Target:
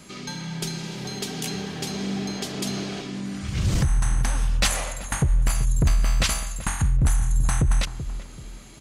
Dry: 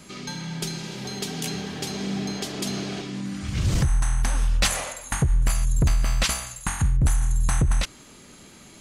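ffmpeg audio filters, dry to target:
ffmpeg -i in.wav -filter_complex "[0:a]asplit=2[link_01][link_02];[link_02]adelay=383,lowpass=frequency=940:poles=1,volume=-11.5dB,asplit=2[link_03][link_04];[link_04]adelay=383,lowpass=frequency=940:poles=1,volume=0.35,asplit=2[link_05][link_06];[link_06]adelay=383,lowpass=frequency=940:poles=1,volume=0.35,asplit=2[link_07][link_08];[link_08]adelay=383,lowpass=frequency=940:poles=1,volume=0.35[link_09];[link_01][link_03][link_05][link_07][link_09]amix=inputs=5:normalize=0" out.wav

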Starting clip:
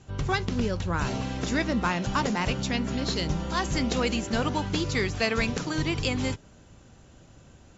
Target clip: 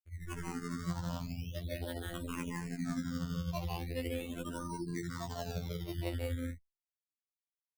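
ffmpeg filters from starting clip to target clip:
ffmpeg -i in.wav -filter_complex "[0:a]afftfilt=real='re*gte(hypot(re,im),0.112)':imag='im*gte(hypot(re,im),0.112)':win_size=1024:overlap=0.75,lowpass=2100,equalizer=frequency=280:width_type=o:width=0.91:gain=-4,acompressor=mode=upward:threshold=-46dB:ratio=2.5,alimiter=level_in=2dB:limit=-24dB:level=0:latency=1:release=17,volume=-2dB,areverse,acompressor=threshold=-37dB:ratio=16,areverse,tremolo=f=12:d=0.88,asplit=2[link_01][link_02];[link_02]aecho=0:1:145.8|183.7|218.7:0.794|0.794|0.282[link_03];[link_01][link_03]amix=inputs=2:normalize=0,acrusher=samples=18:mix=1:aa=0.000001:lfo=1:lforange=18:lforate=0.37,afftfilt=real='hypot(re,im)*cos(PI*b)':imag='0':win_size=2048:overlap=0.75,asplit=2[link_04][link_05];[link_05]afreqshift=-0.47[link_06];[link_04][link_06]amix=inputs=2:normalize=1,volume=9dB" out.wav

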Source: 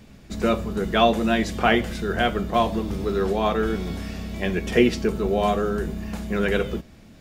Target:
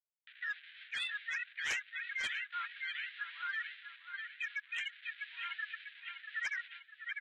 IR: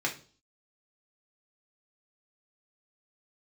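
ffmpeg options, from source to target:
-filter_complex "[0:a]afftfilt=real='re*gte(hypot(re,im),0.2)':imag='im*gte(hypot(re,im),0.2)':win_size=1024:overlap=0.75,areverse,acompressor=threshold=-27dB:ratio=12,areverse,asplit=3[link_01][link_02][link_03];[link_02]asetrate=33038,aresample=44100,atempo=1.33484,volume=-1dB[link_04];[link_03]asetrate=58866,aresample=44100,atempo=0.749154,volume=-3dB[link_05];[link_01][link_04][link_05]amix=inputs=3:normalize=0,aeval=exprs='sgn(val(0))*max(abs(val(0))-0.0015,0)':channel_layout=same,acompressor=mode=upward:threshold=-48dB:ratio=2.5,asuperpass=centerf=2500:order=12:qfactor=1.1,aecho=1:1:648|1296|1944|2592:0.251|0.103|0.0422|0.0173,aeval=exprs='0.15*sin(PI/2*6.31*val(0)/0.15)':channel_layout=same,alimiter=level_in=4dB:limit=-24dB:level=0:latency=1:release=49,volume=-4dB,volume=-3dB" -ar 48000 -c:a libvorbis -b:a 48k

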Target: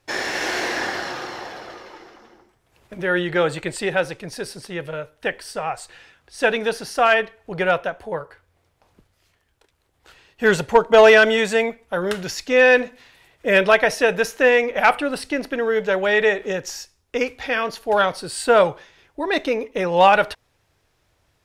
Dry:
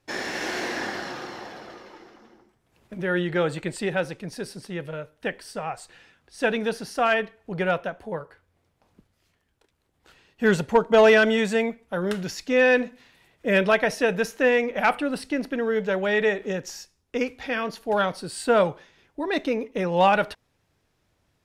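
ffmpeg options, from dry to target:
ffmpeg -i in.wav -af "equalizer=frequency=210:width_type=o:width=1.2:gain=-8,volume=6dB" out.wav

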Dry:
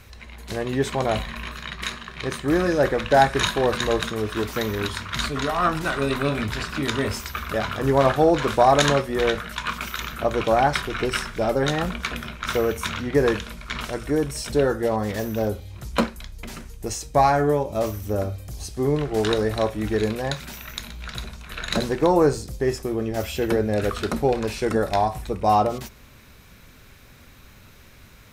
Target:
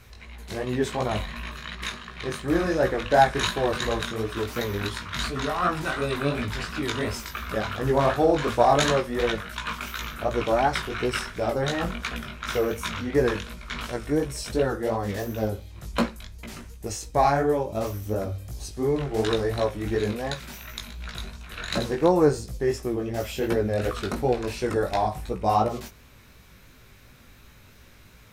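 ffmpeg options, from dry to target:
ffmpeg -i in.wav -af "flanger=delay=16:depth=5:speed=2.8" out.wav

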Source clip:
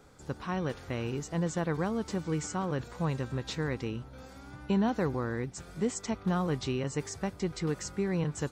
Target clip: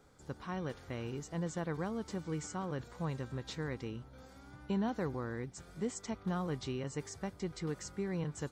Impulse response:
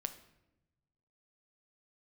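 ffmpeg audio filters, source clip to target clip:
-af "bandreject=frequency=2600:width=17,volume=-6.5dB"

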